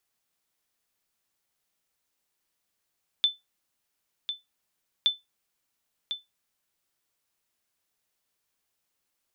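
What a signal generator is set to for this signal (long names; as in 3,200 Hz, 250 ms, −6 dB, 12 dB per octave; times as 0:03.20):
ping with an echo 3,520 Hz, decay 0.18 s, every 1.82 s, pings 2, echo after 1.05 s, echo −9.5 dB −14 dBFS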